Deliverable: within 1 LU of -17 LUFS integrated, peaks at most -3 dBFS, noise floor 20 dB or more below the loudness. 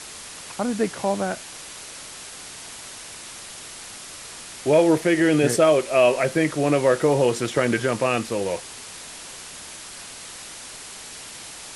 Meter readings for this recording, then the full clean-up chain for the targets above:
noise floor -39 dBFS; noise floor target -41 dBFS; loudness -21.0 LUFS; peak level -6.0 dBFS; loudness target -17.0 LUFS
-> noise reduction 6 dB, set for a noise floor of -39 dBFS; trim +4 dB; peak limiter -3 dBFS

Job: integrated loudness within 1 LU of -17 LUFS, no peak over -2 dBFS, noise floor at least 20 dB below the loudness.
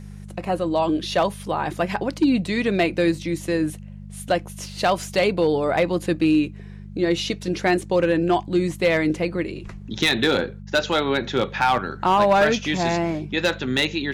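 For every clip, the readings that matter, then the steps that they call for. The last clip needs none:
clipped samples 0.5%; clipping level -11.5 dBFS; hum 50 Hz; highest harmonic 200 Hz; hum level -35 dBFS; loudness -22.0 LUFS; peak level -11.5 dBFS; loudness target -17.0 LUFS
-> clip repair -11.5 dBFS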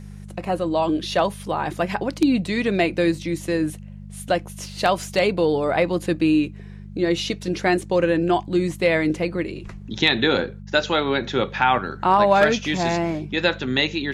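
clipped samples 0.0%; hum 50 Hz; highest harmonic 200 Hz; hum level -35 dBFS
-> de-hum 50 Hz, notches 4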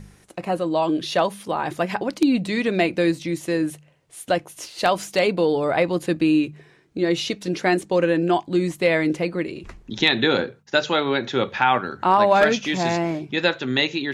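hum not found; loudness -21.5 LUFS; peak level -3.0 dBFS; loudness target -17.0 LUFS
-> trim +4.5 dB; peak limiter -2 dBFS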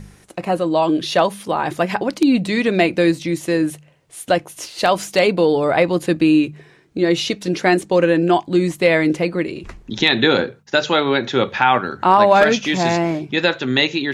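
loudness -17.5 LUFS; peak level -2.0 dBFS; noise floor -50 dBFS

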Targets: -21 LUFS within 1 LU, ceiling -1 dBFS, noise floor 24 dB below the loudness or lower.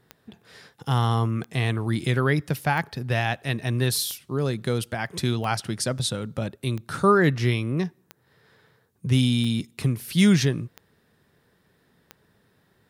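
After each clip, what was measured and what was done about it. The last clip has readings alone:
clicks found 10; loudness -24.5 LUFS; peak level -8.0 dBFS; loudness target -21.0 LUFS
-> de-click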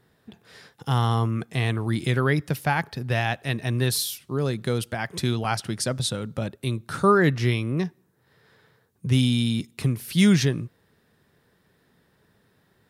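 clicks found 0; loudness -24.5 LUFS; peak level -8.0 dBFS; loudness target -21.0 LUFS
-> trim +3.5 dB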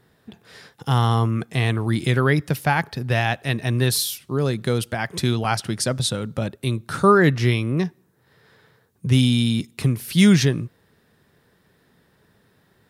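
loudness -21.0 LUFS; peak level -4.5 dBFS; noise floor -62 dBFS

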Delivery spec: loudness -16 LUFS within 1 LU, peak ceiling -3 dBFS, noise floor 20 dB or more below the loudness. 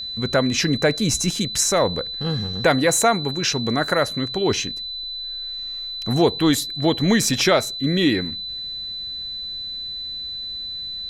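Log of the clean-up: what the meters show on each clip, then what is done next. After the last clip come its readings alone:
steady tone 4 kHz; tone level -28 dBFS; loudness -21.5 LUFS; peak level -5.5 dBFS; loudness target -16.0 LUFS
-> band-stop 4 kHz, Q 30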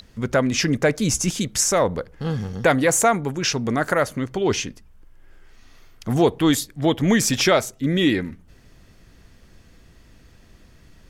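steady tone not found; loudness -21.0 LUFS; peak level -5.0 dBFS; loudness target -16.0 LUFS
-> trim +5 dB; peak limiter -3 dBFS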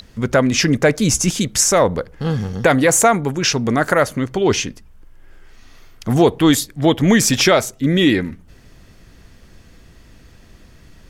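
loudness -16.0 LUFS; peak level -3.0 dBFS; noise floor -47 dBFS

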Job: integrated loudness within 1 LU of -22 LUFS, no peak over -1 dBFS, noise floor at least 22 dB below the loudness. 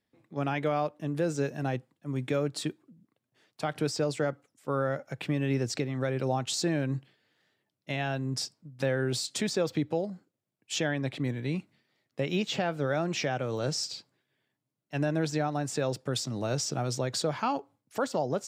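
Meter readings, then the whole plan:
loudness -31.5 LUFS; peak level -16.0 dBFS; loudness target -22.0 LUFS
-> trim +9.5 dB

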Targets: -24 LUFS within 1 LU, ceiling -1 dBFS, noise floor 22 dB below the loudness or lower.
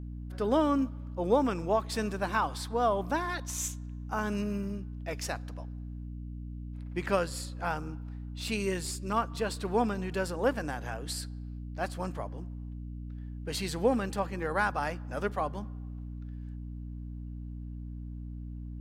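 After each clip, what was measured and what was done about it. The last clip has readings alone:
hum 60 Hz; highest harmonic 300 Hz; hum level -37 dBFS; loudness -33.5 LUFS; peak level -12.5 dBFS; loudness target -24.0 LUFS
-> hum notches 60/120/180/240/300 Hz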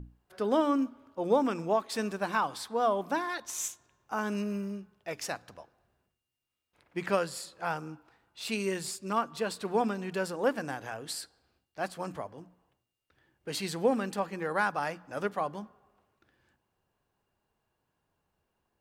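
hum not found; loudness -32.5 LUFS; peak level -12.5 dBFS; loudness target -24.0 LUFS
-> trim +8.5 dB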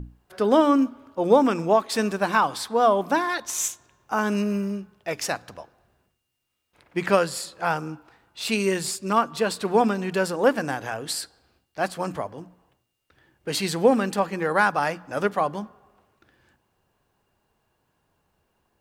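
loudness -24.0 LUFS; peak level -4.0 dBFS; noise floor -75 dBFS

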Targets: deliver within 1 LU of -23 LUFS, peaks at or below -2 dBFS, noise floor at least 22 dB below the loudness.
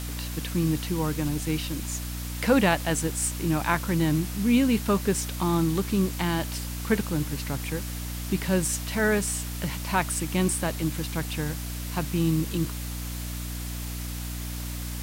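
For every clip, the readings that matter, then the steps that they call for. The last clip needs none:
hum 60 Hz; highest harmonic 300 Hz; hum level -32 dBFS; noise floor -34 dBFS; noise floor target -49 dBFS; loudness -27.0 LUFS; peak level -8.5 dBFS; loudness target -23.0 LUFS
-> de-hum 60 Hz, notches 5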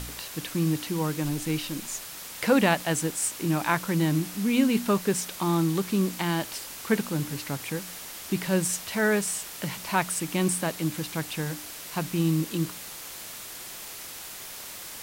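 hum not found; noise floor -41 dBFS; noise floor target -50 dBFS
-> noise reduction 9 dB, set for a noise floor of -41 dBFS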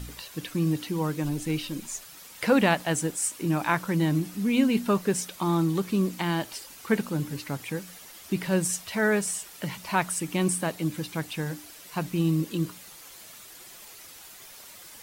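noise floor -47 dBFS; noise floor target -50 dBFS
-> noise reduction 6 dB, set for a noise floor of -47 dBFS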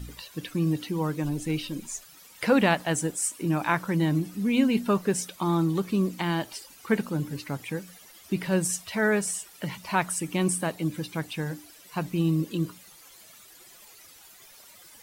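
noise floor -52 dBFS; loudness -27.5 LUFS; peak level -8.5 dBFS; loudness target -23.0 LUFS
-> trim +4.5 dB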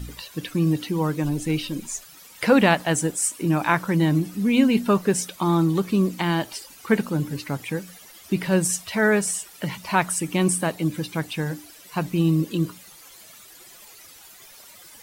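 loudness -23.0 LUFS; peak level -4.0 dBFS; noise floor -47 dBFS

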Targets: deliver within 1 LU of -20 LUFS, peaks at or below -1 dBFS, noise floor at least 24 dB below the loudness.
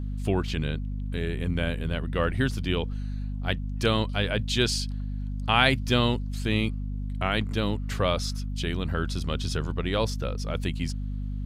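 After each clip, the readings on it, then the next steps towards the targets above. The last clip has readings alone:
hum 50 Hz; highest harmonic 250 Hz; hum level -29 dBFS; loudness -28.0 LUFS; peak level -5.5 dBFS; loudness target -20.0 LUFS
-> de-hum 50 Hz, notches 5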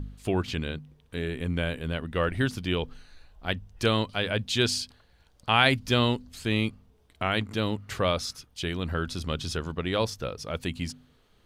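hum not found; loudness -28.5 LUFS; peak level -6.0 dBFS; loudness target -20.0 LUFS
-> trim +8.5 dB; peak limiter -1 dBFS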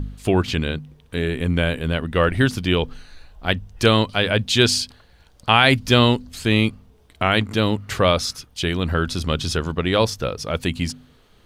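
loudness -20.5 LUFS; peak level -1.0 dBFS; noise floor -54 dBFS

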